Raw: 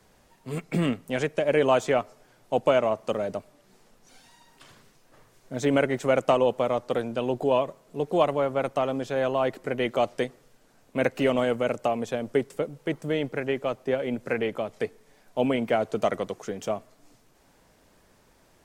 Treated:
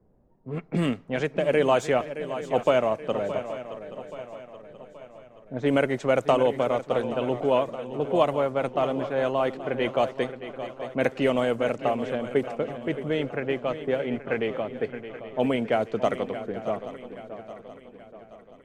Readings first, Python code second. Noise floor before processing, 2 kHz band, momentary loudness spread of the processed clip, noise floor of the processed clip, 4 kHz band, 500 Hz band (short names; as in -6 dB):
-61 dBFS, +0.5 dB, 16 LU, -51 dBFS, 0.0 dB, +0.5 dB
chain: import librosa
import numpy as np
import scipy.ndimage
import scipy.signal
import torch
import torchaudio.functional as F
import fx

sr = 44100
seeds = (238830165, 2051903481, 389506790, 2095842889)

y = fx.env_lowpass(x, sr, base_hz=450.0, full_db=-20.0)
y = fx.echo_swing(y, sr, ms=827, ratio=3, feedback_pct=45, wet_db=-12.0)